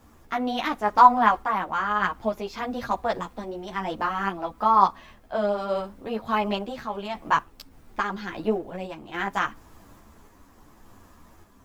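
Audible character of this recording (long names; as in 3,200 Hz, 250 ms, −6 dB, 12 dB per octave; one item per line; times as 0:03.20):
a quantiser's noise floor 12 bits, dither triangular
sample-and-hold tremolo
a shimmering, thickened sound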